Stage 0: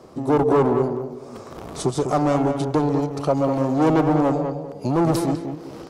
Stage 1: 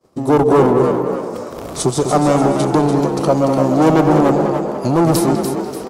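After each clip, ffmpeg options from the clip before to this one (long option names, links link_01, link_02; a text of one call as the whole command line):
ffmpeg -i in.wav -filter_complex "[0:a]crystalizer=i=1:c=0,agate=range=-33dB:threshold=-34dB:ratio=3:detection=peak,asplit=6[link_01][link_02][link_03][link_04][link_05][link_06];[link_02]adelay=292,afreqshift=55,volume=-7dB[link_07];[link_03]adelay=584,afreqshift=110,volume=-15dB[link_08];[link_04]adelay=876,afreqshift=165,volume=-22.9dB[link_09];[link_05]adelay=1168,afreqshift=220,volume=-30.9dB[link_10];[link_06]adelay=1460,afreqshift=275,volume=-38.8dB[link_11];[link_01][link_07][link_08][link_09][link_10][link_11]amix=inputs=6:normalize=0,volume=5.5dB" out.wav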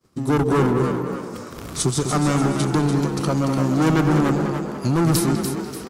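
ffmpeg -i in.wav -af "firequalizer=gain_entry='entry(110,0);entry(600,-14);entry(1400,-1)':delay=0.05:min_phase=1" out.wav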